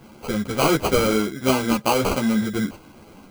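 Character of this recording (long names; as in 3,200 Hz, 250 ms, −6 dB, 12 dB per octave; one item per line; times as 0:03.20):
aliases and images of a low sample rate 1,800 Hz, jitter 0%
a shimmering, thickened sound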